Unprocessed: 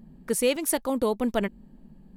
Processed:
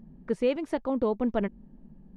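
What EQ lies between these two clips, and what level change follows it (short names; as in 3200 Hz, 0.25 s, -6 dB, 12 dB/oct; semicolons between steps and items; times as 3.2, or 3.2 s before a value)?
tape spacing loss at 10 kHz 34 dB; 0.0 dB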